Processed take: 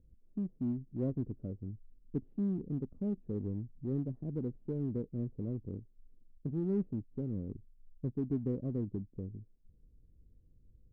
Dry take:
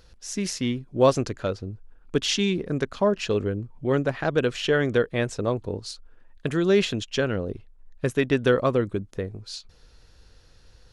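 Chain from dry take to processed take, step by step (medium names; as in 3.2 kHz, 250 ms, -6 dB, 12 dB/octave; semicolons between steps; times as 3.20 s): four-pole ladder low-pass 340 Hz, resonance 25%; in parallel at -11 dB: overload inside the chain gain 34 dB; on the sum: trim -4.5 dB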